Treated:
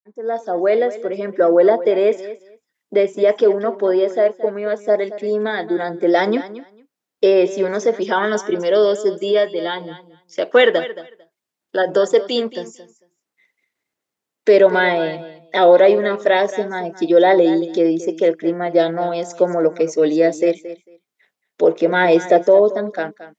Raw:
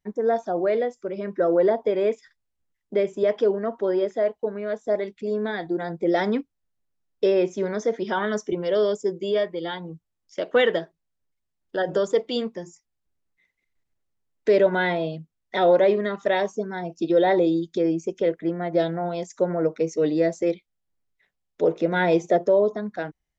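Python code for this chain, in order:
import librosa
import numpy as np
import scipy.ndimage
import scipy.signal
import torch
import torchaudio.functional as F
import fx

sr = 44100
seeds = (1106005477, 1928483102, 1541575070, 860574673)

y = fx.fade_in_head(x, sr, length_s=0.73)
y = scipy.signal.sosfilt(scipy.signal.butter(2, 260.0, 'highpass', fs=sr, output='sos'), y)
y = fx.echo_feedback(y, sr, ms=224, feedback_pct=15, wet_db=-15)
y = y * librosa.db_to_amplitude(7.5)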